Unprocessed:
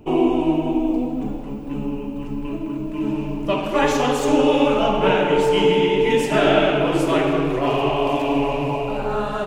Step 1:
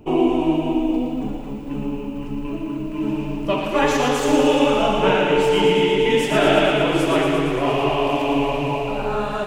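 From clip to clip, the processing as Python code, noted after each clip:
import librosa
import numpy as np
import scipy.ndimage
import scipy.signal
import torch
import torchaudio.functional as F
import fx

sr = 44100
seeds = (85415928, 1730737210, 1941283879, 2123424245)

y = fx.echo_wet_highpass(x, sr, ms=115, feedback_pct=73, hz=1500.0, wet_db=-5)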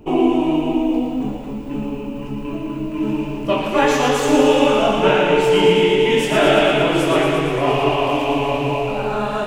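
y = fx.doubler(x, sr, ms=23.0, db=-6.0)
y = F.gain(torch.from_numpy(y), 1.5).numpy()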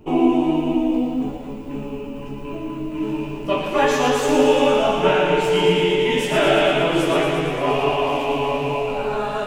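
y = fx.doubler(x, sr, ms=12.0, db=-5)
y = F.gain(torch.from_numpy(y), -3.5).numpy()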